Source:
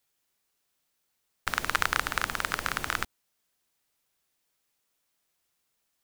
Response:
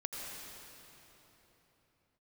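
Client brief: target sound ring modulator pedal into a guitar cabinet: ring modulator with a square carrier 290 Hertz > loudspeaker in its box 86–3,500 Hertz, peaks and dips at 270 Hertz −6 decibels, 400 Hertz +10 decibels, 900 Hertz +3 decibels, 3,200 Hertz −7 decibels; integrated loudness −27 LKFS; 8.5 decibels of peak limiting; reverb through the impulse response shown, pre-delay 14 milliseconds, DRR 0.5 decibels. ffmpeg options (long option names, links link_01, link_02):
-filter_complex "[0:a]alimiter=limit=-12dB:level=0:latency=1,asplit=2[link_01][link_02];[1:a]atrim=start_sample=2205,adelay=14[link_03];[link_02][link_03]afir=irnorm=-1:irlink=0,volume=-2dB[link_04];[link_01][link_04]amix=inputs=2:normalize=0,aeval=exprs='val(0)*sgn(sin(2*PI*290*n/s))':channel_layout=same,highpass=86,equalizer=frequency=270:width_type=q:width=4:gain=-6,equalizer=frequency=400:width_type=q:width=4:gain=10,equalizer=frequency=900:width_type=q:width=4:gain=3,equalizer=frequency=3200:width_type=q:width=4:gain=-7,lowpass=frequency=3500:width=0.5412,lowpass=frequency=3500:width=1.3066,volume=6dB"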